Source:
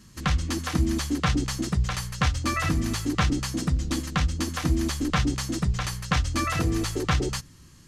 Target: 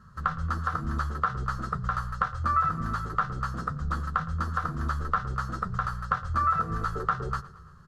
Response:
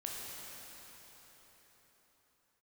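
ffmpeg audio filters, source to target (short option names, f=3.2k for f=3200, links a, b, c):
-filter_complex "[0:a]afftfilt=real='re*lt(hypot(re,im),0.501)':imag='im*lt(hypot(re,im),0.501)':win_size=1024:overlap=0.75,firequalizer=gain_entry='entry(190,0);entry(290,-21);entry(420,-2);entry(880,-2);entry(1300,14);entry(2200,-19);entry(4200,-14);entry(6000,-20)':delay=0.05:min_phase=1,acompressor=threshold=-24dB:ratio=3,asplit=2[a][b];[b]adelay=13,volume=-10.5dB[c];[a][c]amix=inputs=2:normalize=0,asplit=2[d][e];[e]aecho=0:1:113|226|339|452|565:0.119|0.0654|0.036|0.0198|0.0109[f];[d][f]amix=inputs=2:normalize=0"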